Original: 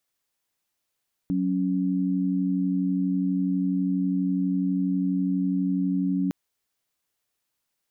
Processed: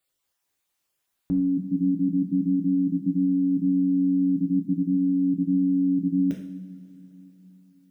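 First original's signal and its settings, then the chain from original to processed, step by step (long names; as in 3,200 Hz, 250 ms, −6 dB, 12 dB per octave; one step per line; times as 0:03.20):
held notes F#3/C#4 sine, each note −24.5 dBFS 5.01 s
time-frequency cells dropped at random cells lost 22%
coupled-rooms reverb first 0.6 s, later 4.2 s, from −19 dB, DRR 0 dB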